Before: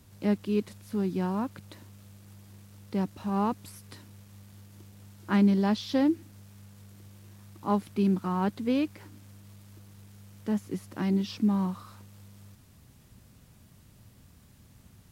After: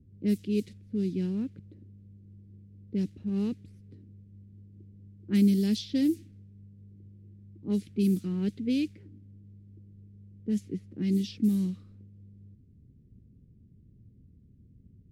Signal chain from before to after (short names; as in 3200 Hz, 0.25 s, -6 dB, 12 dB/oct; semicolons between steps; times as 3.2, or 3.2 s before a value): EQ curve 250 Hz 0 dB, 440 Hz -3 dB, 640 Hz -20 dB, 1000 Hz -29 dB, 2100 Hz -4 dB, 11000 Hz +13 dB; low-pass opened by the level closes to 470 Hz, open at -21 dBFS